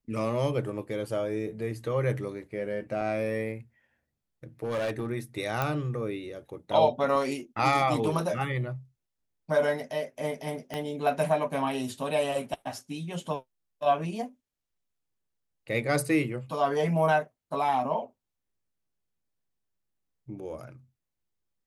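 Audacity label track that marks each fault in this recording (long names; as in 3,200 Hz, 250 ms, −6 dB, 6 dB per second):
3.010000	3.020000	drop-out 5.3 ms
4.640000	5.090000	clipping −26 dBFS
5.620000	5.620000	click −14 dBFS
10.740000	10.740000	click −19 dBFS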